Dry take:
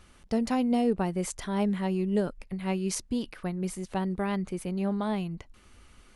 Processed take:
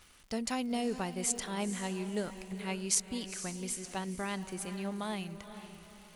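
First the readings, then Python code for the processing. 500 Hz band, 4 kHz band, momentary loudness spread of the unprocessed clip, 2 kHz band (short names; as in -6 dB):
-7.5 dB, +2.0 dB, 8 LU, -1.0 dB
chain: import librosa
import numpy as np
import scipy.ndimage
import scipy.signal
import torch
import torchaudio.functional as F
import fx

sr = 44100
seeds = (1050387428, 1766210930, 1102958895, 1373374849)

y = fx.tilt_shelf(x, sr, db=-6.0, hz=1300.0)
y = fx.echo_diffused(y, sr, ms=471, feedback_pct=40, wet_db=-11.0)
y = fx.dmg_crackle(y, sr, seeds[0], per_s=150.0, level_db=-44.0)
y = fx.dynamic_eq(y, sr, hz=7600.0, q=1.9, threshold_db=-51.0, ratio=4.0, max_db=5)
y = F.gain(torch.from_numpy(y), -3.5).numpy()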